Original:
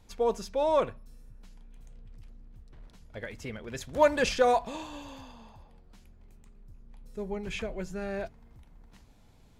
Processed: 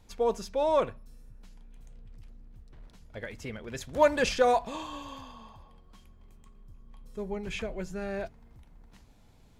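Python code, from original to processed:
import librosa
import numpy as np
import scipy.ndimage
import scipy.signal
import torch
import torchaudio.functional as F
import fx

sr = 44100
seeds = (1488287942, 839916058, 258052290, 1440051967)

y = fx.small_body(x, sr, hz=(1100.0, 3200.0), ring_ms=100, db=18, at=(4.72, 7.21))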